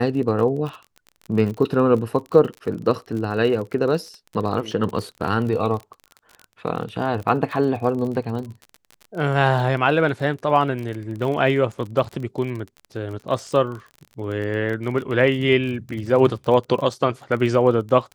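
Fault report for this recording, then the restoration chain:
crackle 35/s -29 dBFS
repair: de-click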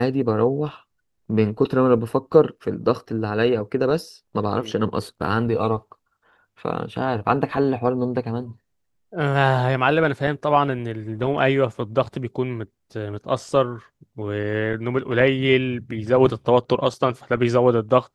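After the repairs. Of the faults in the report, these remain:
none

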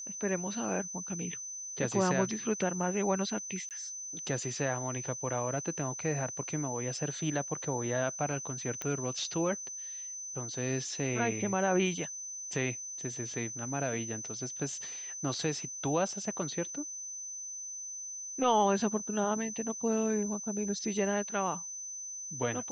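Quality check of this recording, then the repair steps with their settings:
tone 6100 Hz -39 dBFS
3.69–3.71 gap 18 ms
8.82 pop -20 dBFS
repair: de-click; notch 6100 Hz, Q 30; interpolate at 3.69, 18 ms

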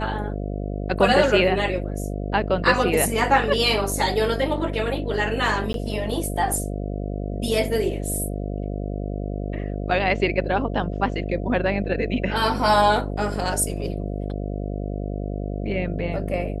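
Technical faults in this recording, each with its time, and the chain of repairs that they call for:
buzz 50 Hz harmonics 14 -28 dBFS
5.73–5.74 gap 12 ms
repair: de-hum 50 Hz, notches 14; interpolate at 5.73, 12 ms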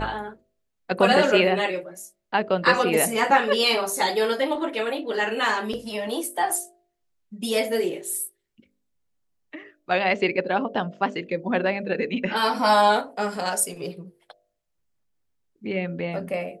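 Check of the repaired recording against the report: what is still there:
none

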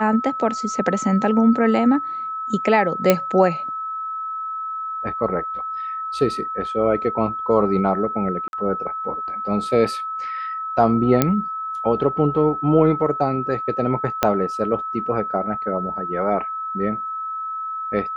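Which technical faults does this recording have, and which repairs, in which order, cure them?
tone 1300 Hz -25 dBFS
3.1 pop 0 dBFS
8.48–8.53 gap 51 ms
11.22 pop -2 dBFS
14.23 pop -2 dBFS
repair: de-click; notch 1300 Hz, Q 30; interpolate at 8.48, 51 ms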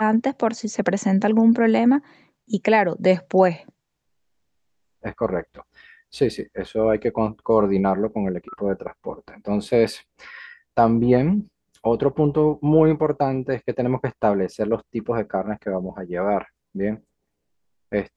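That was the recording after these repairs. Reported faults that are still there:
14.23 pop

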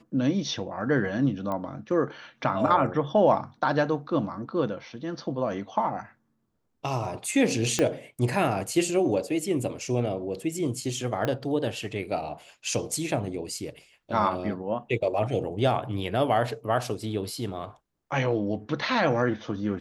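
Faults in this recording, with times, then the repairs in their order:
1.52 pop -20 dBFS
7.79 pop -10 dBFS
11.25 pop -14 dBFS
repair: de-click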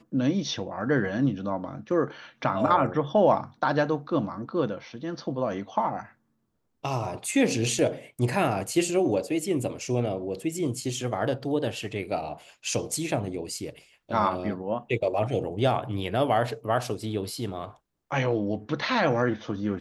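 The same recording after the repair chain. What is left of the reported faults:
7.79 pop
11.25 pop

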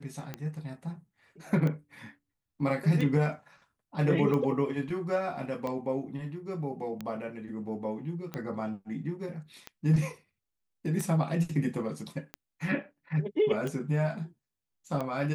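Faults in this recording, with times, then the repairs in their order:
tick 45 rpm -21 dBFS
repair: de-click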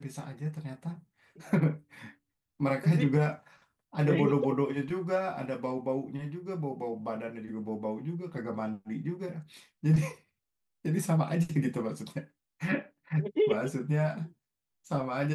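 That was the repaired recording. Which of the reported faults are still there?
none

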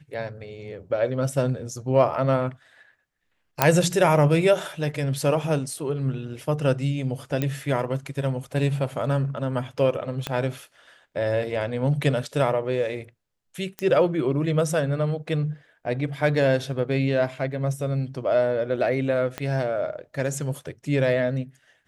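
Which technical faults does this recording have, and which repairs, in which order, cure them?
3.62 pop -1 dBFS
7.42 pop -12 dBFS
10.27 pop -12 dBFS
13.79 pop -14 dBFS
19.38 pop -14 dBFS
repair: de-click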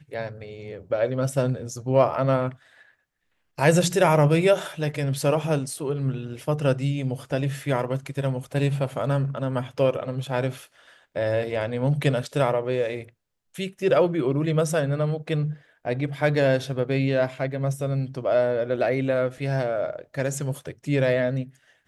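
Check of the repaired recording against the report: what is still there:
10.27 pop
19.38 pop

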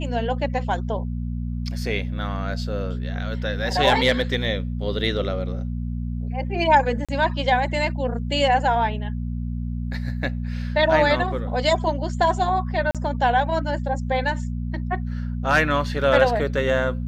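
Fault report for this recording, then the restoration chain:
hum 60 Hz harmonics 4 -27 dBFS
7.05–7.09 gap 36 ms
12.91–12.95 gap 37 ms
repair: de-hum 60 Hz, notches 4; interpolate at 7.05, 36 ms; interpolate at 12.91, 37 ms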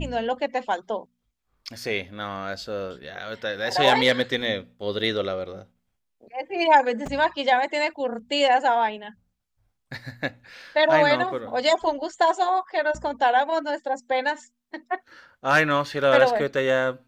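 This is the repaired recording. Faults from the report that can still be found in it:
none

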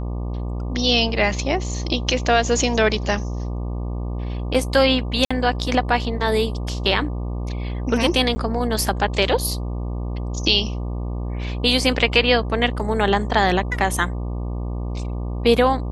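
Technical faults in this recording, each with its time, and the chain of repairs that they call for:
buzz 60 Hz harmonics 20 -26 dBFS
5.25–5.3 gap 55 ms
8.35–8.36 gap 10 ms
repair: de-hum 60 Hz, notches 20; interpolate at 5.25, 55 ms; interpolate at 8.35, 10 ms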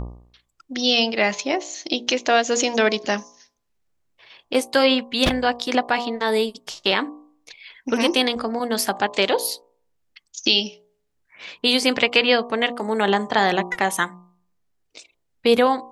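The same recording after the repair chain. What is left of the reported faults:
none

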